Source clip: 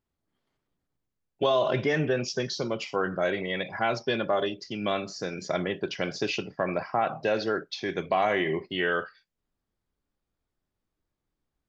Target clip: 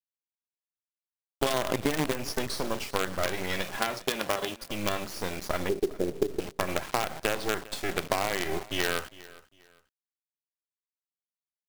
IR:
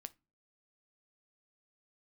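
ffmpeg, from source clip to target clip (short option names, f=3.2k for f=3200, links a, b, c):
-filter_complex "[0:a]asettb=1/sr,asplit=3[a][b][c];[a]atrim=end=1.454[d];[b]atrim=start=1.45:end=2.12,asetpts=PTS-STARTPTS,afade=t=in:d=0.004:c=qsin,afade=t=out:st=0.666:d=0.004:c=qsin,equalizer=f=280:t=o:w=0.34:g=9.5[e];[c]atrim=start=2.116[f];[d][e]acrossfade=d=0.004:c1=hsin:c2=qsin[g];[g][f]acrossfade=d=0.004:c1=qsin:c2=hsin,acrusher=bits=4:dc=4:mix=0:aa=0.000001,asettb=1/sr,asplit=3[h][i][j];[h]atrim=end=5.694[k];[i]atrim=start=5.69:end=6.4,asetpts=PTS-STARTPTS,afade=t=in:d=0.004:c=qsin,afade=t=out:st=0.706:d=0.004:c=qsin,lowpass=f=400:t=q:w=3.8[l];[j]atrim=start=6.396[m];[k][l]acrossfade=d=0.004:c1=hsin:c2=qsin[n];[n][m]acrossfade=d=0.004:c1=qsin:c2=hsin,acompressor=threshold=-27dB:ratio=6,asettb=1/sr,asplit=3[o][p][q];[o]atrim=end=3.774[r];[p]atrim=start=3.77:end=4.56,asetpts=PTS-STARTPTS,afade=t=in:d=0.004:c=qsin,afade=t=out:st=0.786:d=0.004:c=qsin,highpass=f=160:p=1[s];[q]atrim=start=4.556[t];[r][s]acrossfade=d=0.004:c1=hsin:c2=qsin[u];[u][t]acrossfade=d=0.004:c1=qsin:c2=hsin,aecho=1:1:403|806:0.1|0.028,acrusher=bits=4:mode=log:mix=0:aa=0.000001,volume=4dB"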